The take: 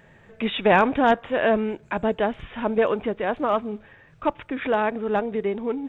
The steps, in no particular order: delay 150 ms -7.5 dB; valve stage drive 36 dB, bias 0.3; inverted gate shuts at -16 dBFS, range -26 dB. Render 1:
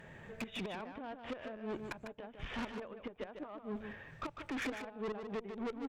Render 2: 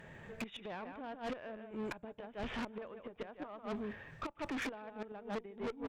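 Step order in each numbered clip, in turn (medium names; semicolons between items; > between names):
inverted gate > valve stage > delay; delay > inverted gate > valve stage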